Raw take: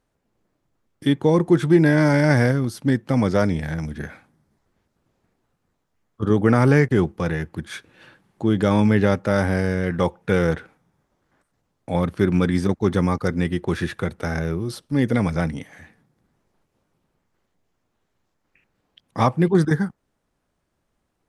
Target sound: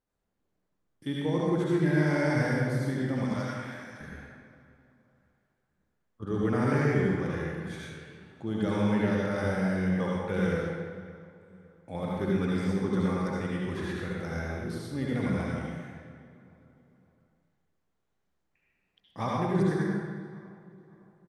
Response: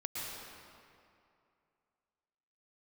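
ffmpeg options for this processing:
-filter_complex "[0:a]asettb=1/sr,asplit=3[a][b][c];[a]atrim=end=3.244[d];[b]atrim=start=3.24:end=4.01,asetpts=PTS-STARTPTS,afade=t=in:d=0.004:c=qsin,afade=t=out:st=0.766:d=0.004:c=qsin,highpass=1k[e];[c]atrim=start=4.006[f];[d][e]acrossfade=d=0.004:c1=hsin:c2=qsin[g];[g][f]acrossfade=d=0.004:c1=qsin:c2=hsin,asplit=2[h][i];[i]adelay=560,lowpass=f=2.6k:p=1,volume=-19dB,asplit=2[j][k];[k]adelay=560,lowpass=f=2.6k:p=1,volume=0.4,asplit=2[l][m];[m]adelay=560,lowpass=f=2.6k:p=1,volume=0.4[n];[h][j][l][n]amix=inputs=4:normalize=0[o];[1:a]atrim=start_sample=2205,asetrate=74970,aresample=44100[p];[o][p]afir=irnorm=-1:irlink=0,volume=-6dB"

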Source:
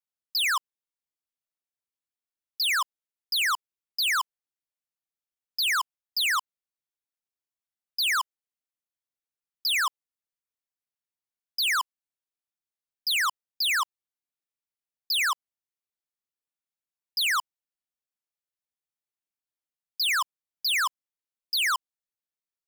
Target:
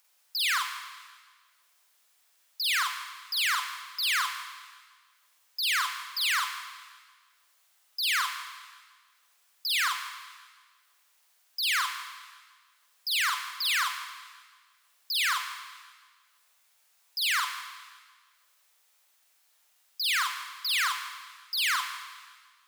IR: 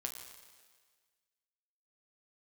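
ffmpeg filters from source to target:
-filter_complex "[0:a]highpass=720,acompressor=mode=upward:threshold=-43dB:ratio=2.5,asplit=2[a][b];[1:a]atrim=start_sample=2205,adelay=47[c];[b][c]afir=irnorm=-1:irlink=0,volume=2dB[d];[a][d]amix=inputs=2:normalize=0,volume=-5dB"

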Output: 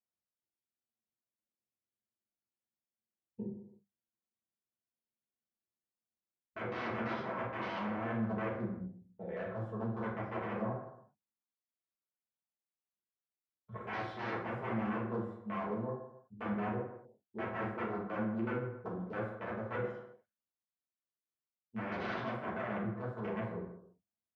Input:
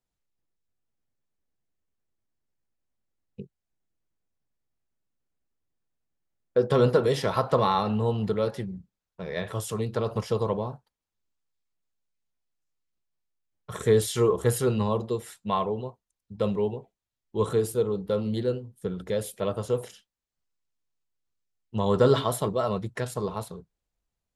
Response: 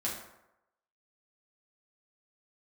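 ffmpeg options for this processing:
-filter_complex "[0:a]aeval=exprs='(mod(10*val(0)+1,2)-1)/10':c=same,bandreject=f=50:t=h:w=6,bandreject=f=100:t=h:w=6,bandreject=f=150:t=h:w=6,bandreject=f=200:t=h:w=6,areverse,acompressor=threshold=-41dB:ratio=5,areverse,afwtdn=0.00501,highpass=120,lowpass=2.1k[a];[1:a]atrim=start_sample=2205,afade=t=out:st=0.43:d=0.01,atrim=end_sample=19404[b];[a][b]afir=irnorm=-1:irlink=0,volume=1dB"

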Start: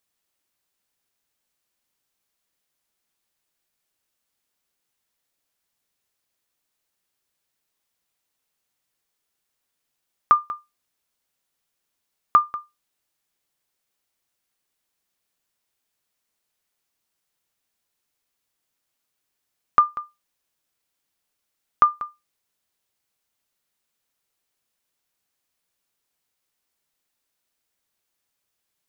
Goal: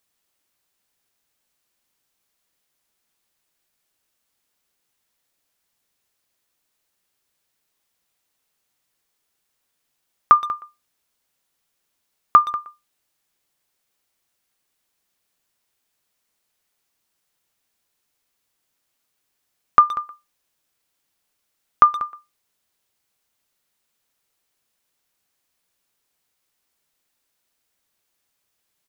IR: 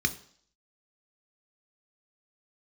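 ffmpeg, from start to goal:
-filter_complex "[0:a]asplit=2[a][b];[b]adelay=120,highpass=300,lowpass=3.4k,asoftclip=type=hard:threshold=-13dB,volume=-15dB[c];[a][c]amix=inputs=2:normalize=0,volume=4dB"

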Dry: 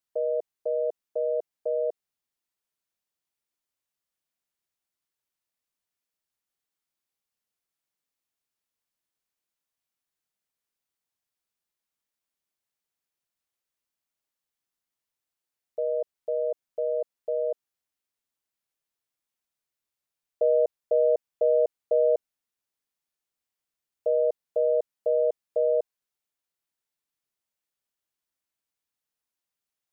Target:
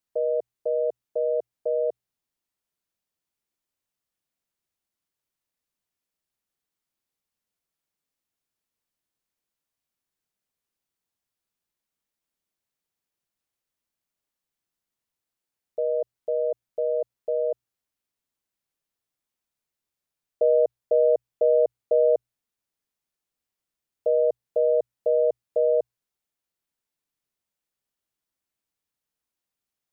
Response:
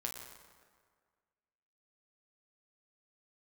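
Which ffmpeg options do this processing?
-af "lowshelf=f=430:g=6,bandreject=f=60:t=h:w=6,bandreject=f=120:t=h:w=6"

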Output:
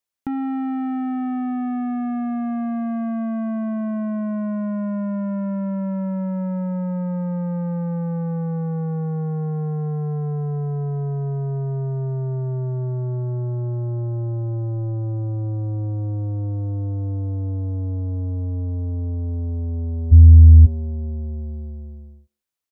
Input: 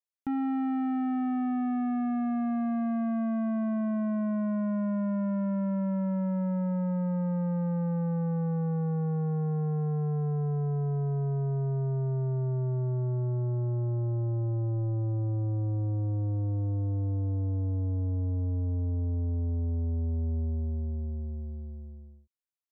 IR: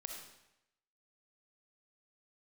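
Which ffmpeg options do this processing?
-filter_complex "[0:a]asplit=2[a][b];[b]adelay=160,highpass=300,lowpass=3.4k,asoftclip=type=hard:threshold=-37.5dB,volume=-25dB[c];[a][c]amix=inputs=2:normalize=0,acompressor=threshold=-32dB:ratio=6,asplit=3[d][e][f];[d]afade=t=out:st=20.11:d=0.02[g];[e]asubboost=boost=12:cutoff=140,afade=t=in:st=20.11:d=0.02,afade=t=out:st=20.65:d=0.02[h];[f]afade=t=in:st=20.65:d=0.02[i];[g][h][i]amix=inputs=3:normalize=0,volume=8dB"

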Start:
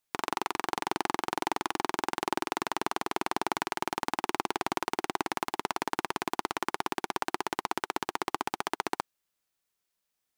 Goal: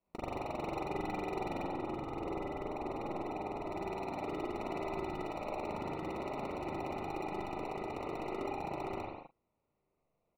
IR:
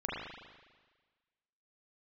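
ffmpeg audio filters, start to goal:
-filter_complex "[0:a]highpass=120,aemphasis=mode=reproduction:type=cd,acrusher=samples=27:mix=1:aa=0.000001,volume=35.5dB,asoftclip=hard,volume=-35.5dB,asetnsamples=n=441:p=0,asendcmd='1.63 lowpass f 1100;3.72 lowpass f 2200',lowpass=f=2.5k:p=1,aecho=1:1:13|43:0.126|0.2[a];[1:a]atrim=start_sample=2205,afade=t=out:st=0.31:d=0.01,atrim=end_sample=14112[b];[a][b]afir=irnorm=-1:irlink=0,volume=2dB"

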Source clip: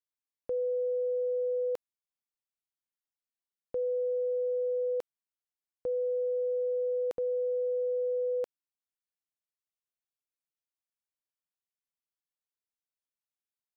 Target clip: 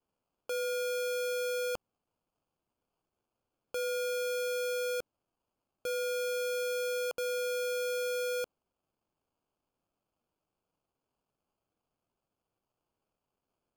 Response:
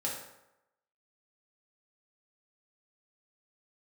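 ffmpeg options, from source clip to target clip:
-af "tiltshelf=f=740:g=-8,acrusher=samples=23:mix=1:aa=0.000001"

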